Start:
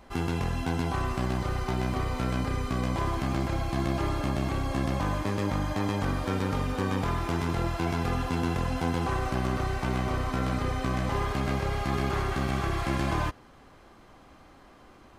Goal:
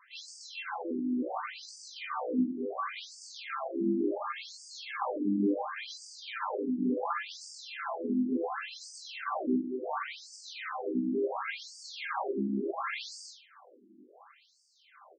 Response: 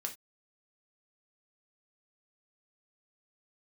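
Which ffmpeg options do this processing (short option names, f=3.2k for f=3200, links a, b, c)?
-filter_complex "[0:a]aecho=1:1:20|44|72.8|107.4|148.8:0.631|0.398|0.251|0.158|0.1[a];[1:a]atrim=start_sample=2205,asetrate=52920,aresample=44100[b];[a][b]afir=irnorm=-1:irlink=0,afftfilt=real='re*between(b*sr/1024,250*pow(6500/250,0.5+0.5*sin(2*PI*0.7*pts/sr))/1.41,250*pow(6500/250,0.5+0.5*sin(2*PI*0.7*pts/sr))*1.41)':imag='im*between(b*sr/1024,250*pow(6500/250,0.5+0.5*sin(2*PI*0.7*pts/sr))/1.41,250*pow(6500/250,0.5+0.5*sin(2*PI*0.7*pts/sr))*1.41)':win_size=1024:overlap=0.75,volume=4dB"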